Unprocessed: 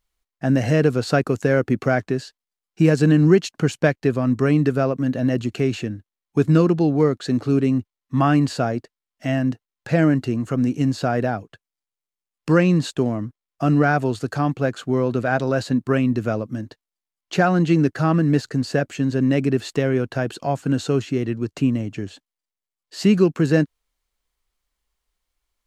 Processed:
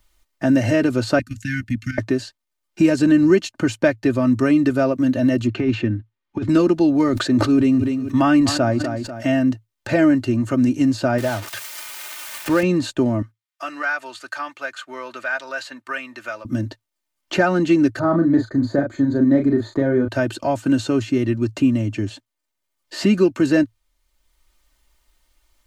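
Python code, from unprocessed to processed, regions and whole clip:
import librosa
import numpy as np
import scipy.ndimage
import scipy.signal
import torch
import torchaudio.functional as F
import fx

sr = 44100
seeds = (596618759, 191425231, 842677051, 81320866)

y = fx.chain(x, sr, fx.cheby2_bandstop(low_hz=400.0, high_hz=980.0, order=4, stop_db=50),
    fx.level_steps(step_db=12), at=(1.19, 1.98))
y = fx.chain(y, sr, fx.lowpass(hz=3100.0, slope=12),
    fx.over_compress(threshold_db=-20.0, ratio=-0.5),
    fx.peak_eq(hz=620.0, db=-6.5, octaves=0.28), at=(5.47, 6.49))
y = fx.chain(y, sr, fx.echo_feedback(ms=246, feedback_pct=29, wet_db=-22),
    fx.sustainer(db_per_s=41.0), at=(7.09, 9.33))
y = fx.chain(y, sr, fx.crossing_spikes(level_db=-12.0),
    fx.lowpass(hz=2000.0, slope=6),
    fx.peak_eq(hz=220.0, db=-6.5, octaves=1.7), at=(11.18, 12.63))
y = fx.chain(y, sr, fx.highpass(hz=1500.0, slope=12),
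    fx.high_shelf(hz=3000.0, db=-6.5), at=(13.22, 16.45))
y = fx.chain(y, sr, fx.moving_average(points=16),
    fx.doubler(ms=36.0, db=-5), at=(17.99, 20.08))
y = fx.peak_eq(y, sr, hz=110.0, db=9.5, octaves=0.32)
y = y + 0.74 * np.pad(y, (int(3.3 * sr / 1000.0), 0))[:len(y)]
y = fx.band_squash(y, sr, depth_pct=40)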